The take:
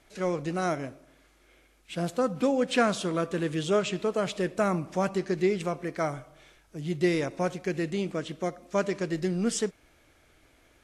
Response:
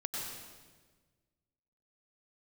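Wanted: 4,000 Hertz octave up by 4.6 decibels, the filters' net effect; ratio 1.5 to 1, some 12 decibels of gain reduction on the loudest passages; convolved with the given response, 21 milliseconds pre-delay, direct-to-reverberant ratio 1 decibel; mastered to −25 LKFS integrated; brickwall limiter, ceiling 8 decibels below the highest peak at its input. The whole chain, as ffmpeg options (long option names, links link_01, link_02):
-filter_complex "[0:a]equalizer=frequency=4000:width_type=o:gain=6,acompressor=threshold=-54dB:ratio=1.5,alimiter=level_in=8dB:limit=-24dB:level=0:latency=1,volume=-8dB,asplit=2[link_01][link_02];[1:a]atrim=start_sample=2205,adelay=21[link_03];[link_02][link_03]afir=irnorm=-1:irlink=0,volume=-3.5dB[link_04];[link_01][link_04]amix=inputs=2:normalize=0,volume=14.5dB"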